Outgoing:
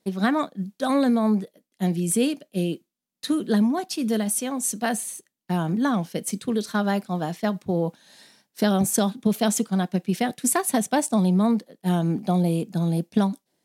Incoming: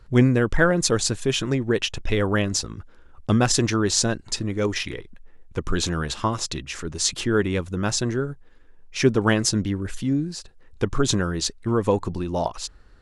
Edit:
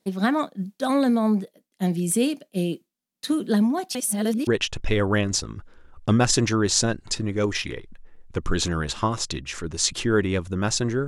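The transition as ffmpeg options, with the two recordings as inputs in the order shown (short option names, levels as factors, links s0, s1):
-filter_complex "[0:a]apad=whole_dur=11.07,atrim=end=11.07,asplit=2[s0][s1];[s0]atrim=end=3.952[s2];[s1]atrim=start=3.948:end=4.472,asetpts=PTS-STARTPTS,areverse[s3];[1:a]atrim=start=1.678:end=8.28[s4];[s2][s3]acrossfade=d=0.004:c1=hsin:c2=hsin[s5];[s5][s4]acrossfade=d=0.004:c1=hsin:c2=hsin"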